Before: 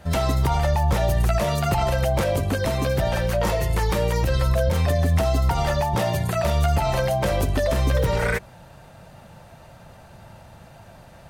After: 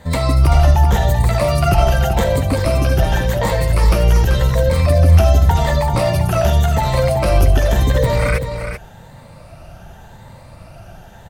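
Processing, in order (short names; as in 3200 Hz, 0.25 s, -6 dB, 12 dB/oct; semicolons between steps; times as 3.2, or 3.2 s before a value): moving spectral ripple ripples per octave 1, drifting +0.88 Hz, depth 10 dB; low shelf 63 Hz +10 dB; on a send: echo 0.386 s -8 dB; on the sum: gain +3 dB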